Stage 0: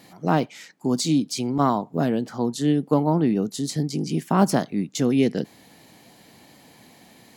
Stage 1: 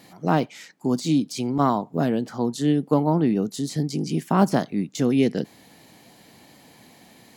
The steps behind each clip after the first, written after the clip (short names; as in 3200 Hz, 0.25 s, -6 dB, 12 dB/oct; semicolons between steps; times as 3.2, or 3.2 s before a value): de-esser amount 60%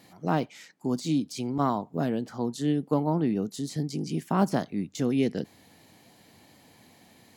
bell 92 Hz +8.5 dB 0.28 oct; gain -5.5 dB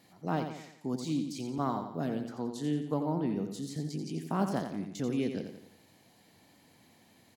feedback echo 87 ms, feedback 47%, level -7.5 dB; gain -6.5 dB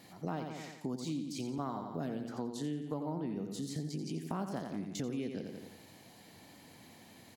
compressor 4:1, threshold -42 dBFS, peak gain reduction 15 dB; gain +5.5 dB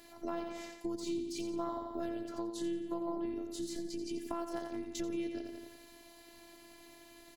robotiser 340 Hz; gain +2.5 dB